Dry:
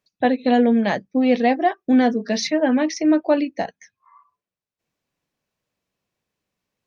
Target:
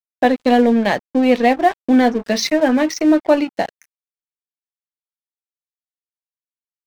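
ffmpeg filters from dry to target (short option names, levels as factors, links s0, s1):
-filter_complex "[0:a]equalizer=f=150:t=o:w=1.5:g=-4,asplit=2[s0][s1];[s1]acompressor=threshold=0.0316:ratio=8,volume=0.891[s2];[s0][s2]amix=inputs=2:normalize=0,aeval=exprs='sgn(val(0))*max(abs(val(0))-0.0188,0)':c=same,volume=1.58"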